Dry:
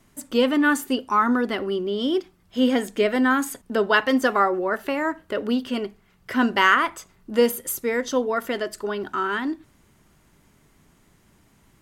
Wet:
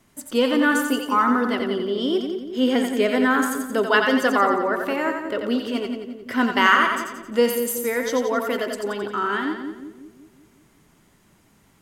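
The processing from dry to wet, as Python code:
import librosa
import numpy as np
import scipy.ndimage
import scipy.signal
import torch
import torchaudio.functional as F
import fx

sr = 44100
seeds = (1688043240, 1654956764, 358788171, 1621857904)

y = fx.low_shelf(x, sr, hz=73.0, db=-7.0)
y = fx.echo_split(y, sr, split_hz=520.0, low_ms=185, high_ms=88, feedback_pct=52, wet_db=-5)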